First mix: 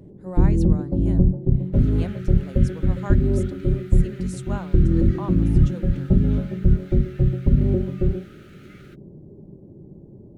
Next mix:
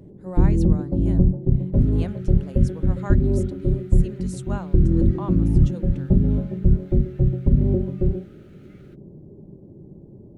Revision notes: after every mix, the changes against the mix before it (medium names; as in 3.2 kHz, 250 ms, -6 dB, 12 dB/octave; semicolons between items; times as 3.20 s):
second sound -9.0 dB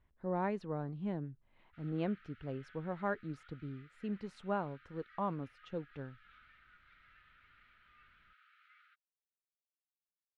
first sound: muted; master: add distance through air 360 m